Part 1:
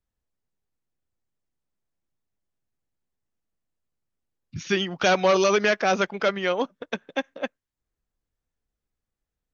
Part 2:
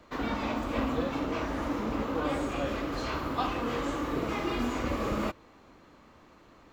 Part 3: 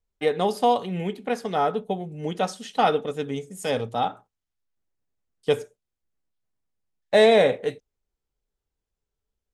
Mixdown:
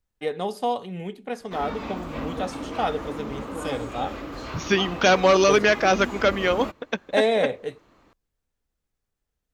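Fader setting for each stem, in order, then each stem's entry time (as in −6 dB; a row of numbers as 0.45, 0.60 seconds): +2.5, −2.0, −5.0 decibels; 0.00, 1.40, 0.00 seconds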